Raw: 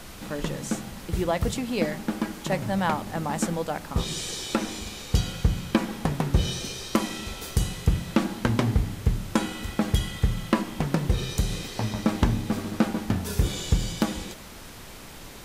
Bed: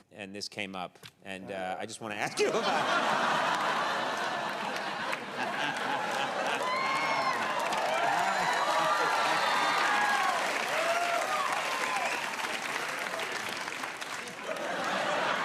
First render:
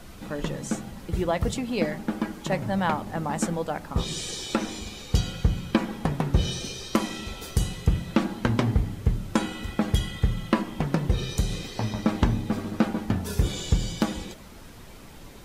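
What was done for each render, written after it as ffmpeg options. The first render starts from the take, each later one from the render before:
ffmpeg -i in.wav -af "afftdn=noise_reduction=7:noise_floor=-43" out.wav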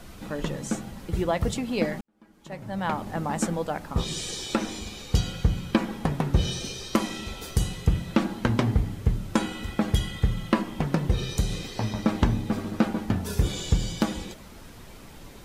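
ffmpeg -i in.wav -filter_complex "[0:a]asplit=2[link_01][link_02];[link_01]atrim=end=2.01,asetpts=PTS-STARTPTS,afade=type=out:start_time=2.006:duration=0.004:curve=hsin[link_03];[link_02]atrim=start=2.01,asetpts=PTS-STARTPTS,afade=type=in:duration=1.03:curve=qua[link_04];[link_03][link_04]concat=n=2:v=0:a=1" out.wav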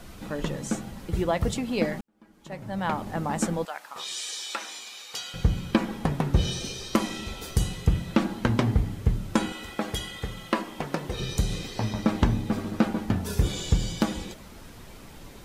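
ffmpeg -i in.wav -filter_complex "[0:a]asettb=1/sr,asplit=3[link_01][link_02][link_03];[link_01]atrim=end=3.654[link_04];[link_02]atrim=start=3.65:end=5.34,asetpts=PTS-STARTPTS,afade=type=in:duration=0.004:curve=qsin,afade=type=out:start_time=1.686:duration=0.004:curve=qsin,highpass=1000[link_05];[link_03]atrim=start=5.336[link_06];[link_04][link_05]acrossfade=duration=0.004:curve1=hsin:curve2=qsin[link_07];[link_07][link_06]acrossfade=duration=0.004:curve1=qsin:curve2=hsin,asettb=1/sr,asplit=3[link_08][link_09][link_10];[link_08]atrim=end=9.524[link_11];[link_09]atrim=start=9.52:end=11.2,asetpts=PTS-STARTPTS,afade=type=in:duration=0.004:curve=qsin,afade=type=out:start_time=1.676:duration=0.004:curve=qsin,bass=frequency=250:gain=-12,treble=frequency=4000:gain=1[link_12];[link_10]atrim=start=11.196[link_13];[link_11][link_12]acrossfade=duration=0.004:curve1=hsin:curve2=qsin[link_14];[link_14][link_13]acrossfade=duration=0.004:curve1=qsin:curve2=hsin" out.wav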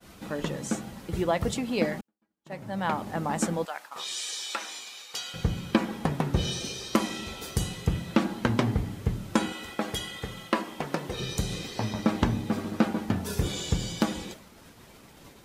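ffmpeg -i in.wav -af "agate=range=-33dB:threshold=-40dB:ratio=3:detection=peak,highpass=frequency=120:poles=1" out.wav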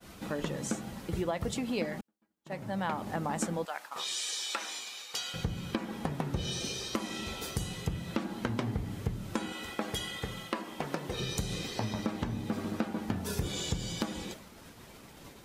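ffmpeg -i in.wav -af "alimiter=limit=-13.5dB:level=0:latency=1:release=388,acompressor=threshold=-31dB:ratio=2.5" out.wav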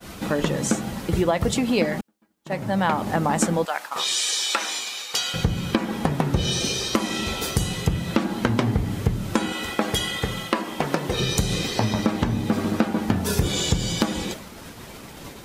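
ffmpeg -i in.wav -af "volume=11.5dB" out.wav

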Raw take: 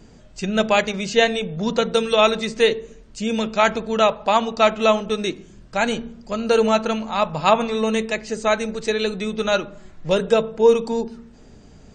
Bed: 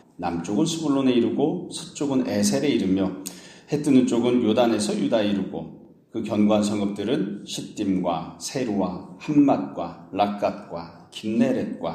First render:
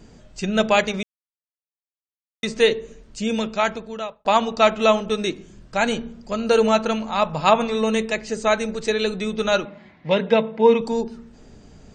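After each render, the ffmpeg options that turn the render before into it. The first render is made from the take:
ffmpeg -i in.wav -filter_complex "[0:a]asettb=1/sr,asplit=3[link_01][link_02][link_03];[link_01]atrim=end=9.654[link_04];[link_02]atrim=start=9.65:end=10.81,asetpts=PTS-STARTPTS,afade=type=in:duration=0.004:curve=qsin,afade=type=out:start_time=1.156:duration=0.004:curve=qsin,highpass=140,equalizer=frequency=230:width_type=q:width=4:gain=5,equalizer=frequency=380:width_type=q:width=4:gain=-5,equalizer=frequency=920:width_type=q:width=4:gain=5,equalizer=frequency=1300:width_type=q:width=4:gain=-5,equalizer=frequency=2100:width_type=q:width=4:gain=10,lowpass=frequency=4300:width=0.5412,lowpass=frequency=4300:width=1.3066[link_05];[link_03]atrim=start=10.806[link_06];[link_04][link_05]acrossfade=duration=0.004:curve1=hsin:curve2=qsin[link_07];[link_07][link_06]acrossfade=duration=0.004:curve1=qsin:curve2=hsin,asplit=4[link_08][link_09][link_10][link_11];[link_08]atrim=end=1.03,asetpts=PTS-STARTPTS,afade=type=out:start_time=1.026:duration=0.004:curve=hsin[link_12];[link_09]atrim=start=1.03:end=2.43,asetpts=PTS-STARTPTS,volume=0[link_13];[link_10]atrim=start=2.43:end=4.25,asetpts=PTS-STARTPTS,afade=type=in:duration=0.004:curve=hsin,afade=type=out:start_time=0.84:duration=0.98[link_14];[link_11]atrim=start=4.25,asetpts=PTS-STARTPTS,afade=type=in:duration=0.004:curve=hsin[link_15];[link_12][link_13][link_14][link_15]concat=n=4:v=0:a=1" out.wav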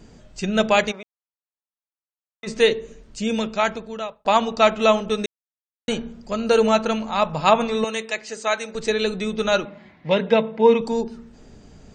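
ffmpeg -i in.wav -filter_complex "[0:a]asplit=3[link_01][link_02][link_03];[link_01]afade=type=out:start_time=0.91:duration=0.02[link_04];[link_02]bandpass=frequency=930:width_type=q:width=1.3,afade=type=in:start_time=0.91:duration=0.02,afade=type=out:start_time=2.46:duration=0.02[link_05];[link_03]afade=type=in:start_time=2.46:duration=0.02[link_06];[link_04][link_05][link_06]amix=inputs=3:normalize=0,asettb=1/sr,asplit=3[link_07][link_08][link_09];[link_07]atrim=end=7.844[link_10];[link_08]atrim=start=7.84:end=8.75,asetpts=PTS-STARTPTS,afade=type=in:duration=0.004:curve=qsin,afade=type=out:start_time=0.906:duration=0.004:curve=qsin,highpass=frequency=840:poles=1[link_11];[link_09]atrim=start=8.746[link_12];[link_10][link_11]acrossfade=duration=0.004:curve1=hsin:curve2=qsin[link_13];[link_13][link_12]acrossfade=duration=0.004:curve1=qsin:curve2=hsin,asplit=3[link_14][link_15][link_16];[link_14]atrim=end=5.26,asetpts=PTS-STARTPTS,afade=type=out:start_time=5.256:duration=0.004:curve=hsin[link_17];[link_15]atrim=start=5.26:end=5.88,asetpts=PTS-STARTPTS,volume=0[link_18];[link_16]atrim=start=5.88,asetpts=PTS-STARTPTS,afade=type=in:duration=0.004:curve=hsin[link_19];[link_17][link_18][link_19]concat=n=3:v=0:a=1" out.wav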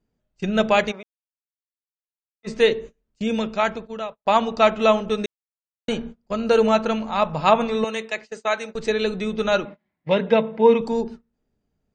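ffmpeg -i in.wav -af "lowpass=frequency=3600:poles=1,agate=range=-28dB:threshold=-34dB:ratio=16:detection=peak" out.wav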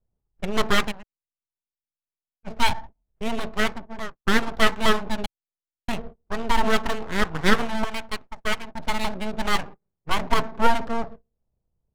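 ffmpeg -i in.wav -filter_complex "[0:a]acrossover=split=160[link_01][link_02];[link_02]aeval=exprs='abs(val(0))':channel_layout=same[link_03];[link_01][link_03]amix=inputs=2:normalize=0,adynamicsmooth=sensitivity=7.5:basefreq=700" out.wav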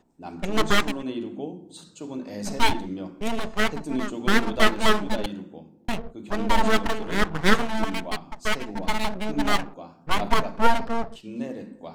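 ffmpeg -i in.wav -i bed.wav -filter_complex "[1:a]volume=-11.5dB[link_01];[0:a][link_01]amix=inputs=2:normalize=0" out.wav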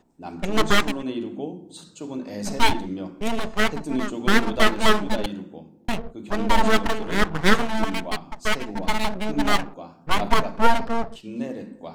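ffmpeg -i in.wav -af "volume=2dB,alimiter=limit=-2dB:level=0:latency=1" out.wav

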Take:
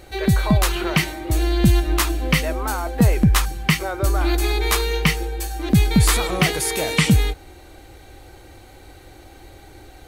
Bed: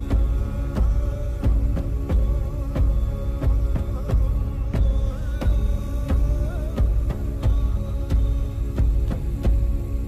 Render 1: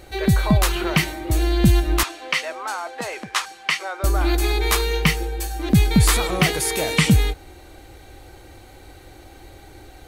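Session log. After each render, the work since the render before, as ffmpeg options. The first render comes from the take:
ffmpeg -i in.wav -filter_complex "[0:a]asettb=1/sr,asplit=3[link_01][link_02][link_03];[link_01]atrim=end=2.034[link_04];[link_02]atrim=start=2.03:end=4.04,asetpts=PTS-STARTPTS,afade=type=in:duration=0.004:curve=qsin,afade=type=out:start_time=2.006:duration=0.004:curve=qsin,highpass=690,lowpass=6900[link_05];[link_03]atrim=start=4.036[link_06];[link_04][link_05]acrossfade=duration=0.004:curve1=hsin:curve2=qsin[link_07];[link_07][link_06]acrossfade=duration=0.004:curve1=qsin:curve2=hsin" out.wav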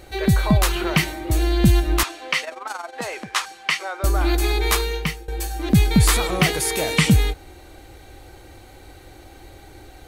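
ffmpeg -i in.wav -filter_complex "[0:a]asettb=1/sr,asplit=3[link_01][link_02][link_03];[link_01]atrim=end=2.444[link_04];[link_02]atrim=start=2.44:end=2.95,asetpts=PTS-STARTPTS,afade=type=in:duration=0.004:curve=qsin,afade=type=out:start_time=0.506:duration=0.004:curve=qsin,tremolo=f=22:d=0.71[link_05];[link_03]atrim=start=2.946[link_06];[link_04][link_05]acrossfade=duration=0.004:curve1=hsin:curve2=qsin[link_07];[link_07][link_06]acrossfade=duration=0.004:curve1=qsin:curve2=hsin,asplit=2[link_08][link_09];[link_08]atrim=end=5.28,asetpts=PTS-STARTPTS,afade=type=out:start_time=4.73:duration=0.55:silence=0.11885[link_10];[link_09]atrim=start=5.28,asetpts=PTS-STARTPTS,afade=type=in:duration=0.004:curve=hsin:silence=0.11885[link_11];[link_10][link_11]concat=n=2:v=0:a=1" out.wav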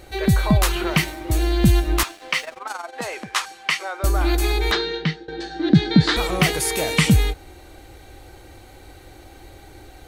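ffmpeg -i in.wav -filter_complex "[0:a]asettb=1/sr,asplit=3[link_01][link_02][link_03];[link_01]atrim=end=0.904[link_04];[link_02]atrim=start=0.9:end=2.6,asetpts=PTS-STARTPTS,afade=type=in:duration=0.004:curve=qsin,afade=type=out:start_time=1.696:duration=0.004:curve=qsin,aeval=exprs='sgn(val(0))*max(abs(val(0))-0.00794,0)':channel_layout=same[link_05];[link_03]atrim=start=2.596[link_06];[link_04][link_05]acrossfade=duration=0.004:curve1=hsin:curve2=qsin[link_07];[link_07][link_06]acrossfade=duration=0.004:curve1=qsin:curve2=hsin,asplit=3[link_08][link_09][link_10];[link_08]afade=type=out:start_time=4.7:duration=0.02[link_11];[link_09]highpass=160,equalizer=frequency=160:width_type=q:width=4:gain=9,equalizer=frequency=310:width_type=q:width=4:gain=10,equalizer=frequency=1100:width_type=q:width=4:gain=-7,equalizer=frequency=1600:width_type=q:width=4:gain=7,equalizer=frequency=2500:width_type=q:width=4:gain=-7,equalizer=frequency=3900:width_type=q:width=4:gain=7,lowpass=frequency=4700:width=0.5412,lowpass=frequency=4700:width=1.3066,afade=type=in:start_time=4.7:duration=0.02,afade=type=out:start_time=6.16:duration=0.02[link_12];[link_10]afade=type=in:start_time=6.16:duration=0.02[link_13];[link_11][link_12][link_13]amix=inputs=3:normalize=0" out.wav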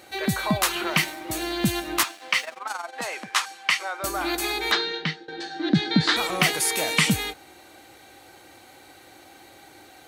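ffmpeg -i in.wav -af "highpass=240,equalizer=frequency=420:width_type=o:width=0.97:gain=-6.5" out.wav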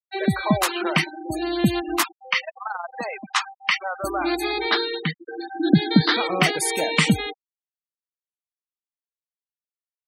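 ffmpeg -i in.wav -af "afftfilt=real='re*gte(hypot(re,im),0.0562)':imag='im*gte(hypot(re,im),0.0562)':win_size=1024:overlap=0.75,equalizer=frequency=350:width=0.38:gain=5.5" out.wav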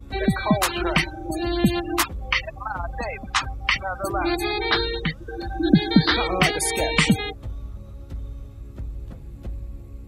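ffmpeg -i in.wav -i bed.wav -filter_complex "[1:a]volume=-13dB[link_01];[0:a][link_01]amix=inputs=2:normalize=0" out.wav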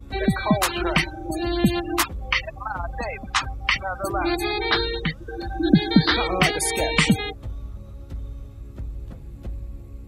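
ffmpeg -i in.wav -af anull out.wav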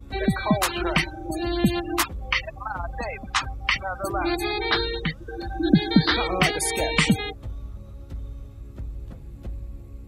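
ffmpeg -i in.wav -af "volume=-1.5dB" out.wav

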